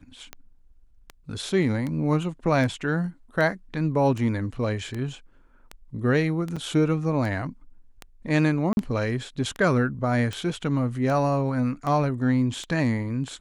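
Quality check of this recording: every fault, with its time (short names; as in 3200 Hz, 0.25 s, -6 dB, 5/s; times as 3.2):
tick 78 rpm -19 dBFS
6.56–6.57 gap 5.9 ms
8.73–8.77 gap 41 ms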